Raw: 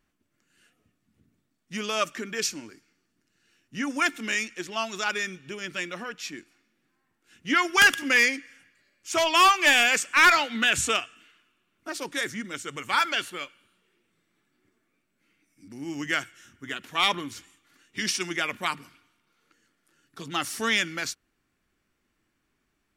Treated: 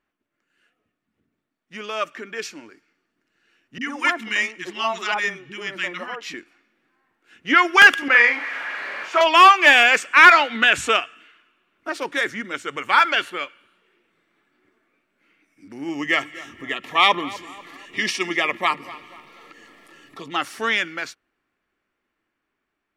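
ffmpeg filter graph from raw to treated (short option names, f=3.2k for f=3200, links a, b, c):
-filter_complex "[0:a]asettb=1/sr,asplit=3[a][b][c];[a]atrim=end=3.784[d];[b]atrim=start=3.78:end=6.34,asetpts=PTS-STARTPTS,afade=t=in:d=0.004:c=qsin,afade=t=out:st=2.556:d=0.004:c=qsin,aecho=1:1:1:0.33,atrim=end_sample=112896,acrossover=split=300|1200[e][f][g];[g]adelay=30[h];[f]adelay=80[i];[e][i][h]amix=inputs=3:normalize=0,atrim=end_sample=112896[j];[c]atrim=start=6.336[k];[d][j]acrossfade=d=0.004:c1=hsin:c2=qsin[l];[l][k]acrossfade=d=0.004:c1=qsin:c2=hsin,asettb=1/sr,asplit=3[m][n][o];[m]atrim=end=8.084[p];[n]atrim=start=8.08:end=9.21,asetpts=PTS-STARTPTS,afade=t=in:d=0.004:c=qsin,afade=t=out:st=1.126:d=0.004:c=qsin,aeval=exprs='val(0)+0.5*0.0398*sgn(val(0))':c=same,bandpass=f=1.2k:t=q:w=0.88,asplit=2[q][r];[r]adelay=42,volume=-6dB[s];[q][s]amix=inputs=2:normalize=0,atrim=end_sample=49833[t];[o]atrim=start=9.206[u];[p][t]acrossfade=d=0.004:c1=hsin:c2=qsin[v];[v][u]acrossfade=d=0.004:c1=qsin:c2=hsin,asettb=1/sr,asplit=3[w][x][y];[w]atrim=end=15.894[z];[x]atrim=start=15.89:end=20.36,asetpts=PTS-STARTPTS,afade=t=in:d=0.004:c=qsin,afade=t=out:st=4.466:d=0.004:c=qsin,acompressor=mode=upward:threshold=-36dB:ratio=2.5:attack=3.2:release=140:knee=2.83:detection=peak,asuperstop=centerf=1500:order=12:qfactor=5.6,asplit=2[aa][ab];[ab]adelay=245,lowpass=f=2.3k:p=1,volume=-16.5dB,asplit=2[ac][ad];[ad]adelay=245,lowpass=f=2.3k:p=1,volume=0.47,asplit=2[ae][af];[af]adelay=245,lowpass=f=2.3k:p=1,volume=0.47,asplit=2[ag][ah];[ah]adelay=245,lowpass=f=2.3k:p=1,volume=0.47[ai];[aa][ac][ae][ag][ai]amix=inputs=5:normalize=0,atrim=end_sample=197127[aj];[y]atrim=start=20.356[ak];[z][aj]acrossfade=d=0.004:c1=hsin:c2=qsin[al];[al][ak]acrossfade=d=0.004:c1=qsin:c2=hsin,bass=f=250:g=-12,treble=f=4k:g=-14,dynaudnorm=f=770:g=9:m=11.5dB"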